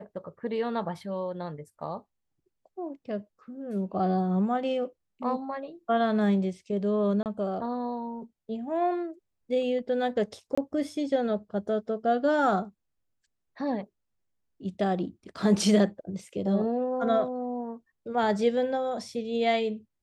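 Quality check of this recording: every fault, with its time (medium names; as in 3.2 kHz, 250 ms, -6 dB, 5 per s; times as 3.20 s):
7.23–7.26 s: dropout 28 ms
10.55–10.57 s: dropout 25 ms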